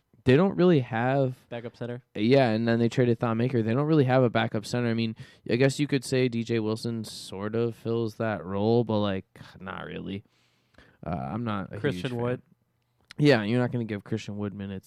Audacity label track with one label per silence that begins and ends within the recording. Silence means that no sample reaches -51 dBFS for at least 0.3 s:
10.260000	10.750000	silence
12.530000	13.010000	silence